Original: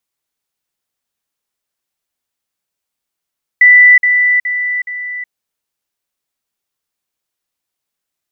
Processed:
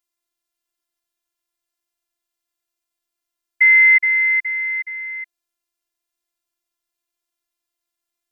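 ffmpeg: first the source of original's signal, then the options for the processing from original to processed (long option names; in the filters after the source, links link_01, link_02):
-f lavfi -i "aevalsrc='pow(10,(-2-6*floor(t/0.42))/20)*sin(2*PI*1980*t)*clip(min(mod(t,0.42),0.37-mod(t,0.42))/0.005,0,1)':duration=1.68:sample_rate=44100"
-af "afftfilt=real='hypot(re,im)*cos(PI*b)':imag='0':win_size=512:overlap=0.75"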